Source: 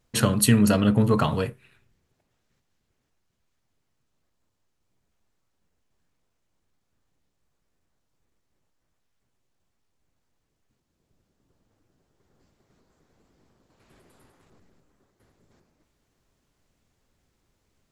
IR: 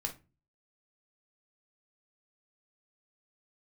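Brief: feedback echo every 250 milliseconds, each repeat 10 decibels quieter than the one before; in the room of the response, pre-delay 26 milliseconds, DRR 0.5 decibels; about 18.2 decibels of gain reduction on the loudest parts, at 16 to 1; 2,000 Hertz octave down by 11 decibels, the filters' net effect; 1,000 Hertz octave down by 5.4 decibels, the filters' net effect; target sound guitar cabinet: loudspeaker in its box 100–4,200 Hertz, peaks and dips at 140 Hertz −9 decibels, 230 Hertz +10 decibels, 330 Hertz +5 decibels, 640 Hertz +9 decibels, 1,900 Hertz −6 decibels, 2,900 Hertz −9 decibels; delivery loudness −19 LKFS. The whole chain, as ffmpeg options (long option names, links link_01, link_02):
-filter_complex "[0:a]equalizer=frequency=1000:width_type=o:gain=-8.5,equalizer=frequency=2000:width_type=o:gain=-7,acompressor=threshold=-33dB:ratio=16,aecho=1:1:250|500|750|1000:0.316|0.101|0.0324|0.0104,asplit=2[link_01][link_02];[1:a]atrim=start_sample=2205,adelay=26[link_03];[link_02][link_03]afir=irnorm=-1:irlink=0,volume=-1.5dB[link_04];[link_01][link_04]amix=inputs=2:normalize=0,highpass=100,equalizer=frequency=140:width_type=q:width=4:gain=-9,equalizer=frequency=230:width_type=q:width=4:gain=10,equalizer=frequency=330:width_type=q:width=4:gain=5,equalizer=frequency=640:width_type=q:width=4:gain=9,equalizer=frequency=1900:width_type=q:width=4:gain=-6,equalizer=frequency=2900:width_type=q:width=4:gain=-9,lowpass=frequency=4200:width=0.5412,lowpass=frequency=4200:width=1.3066,volume=12.5dB"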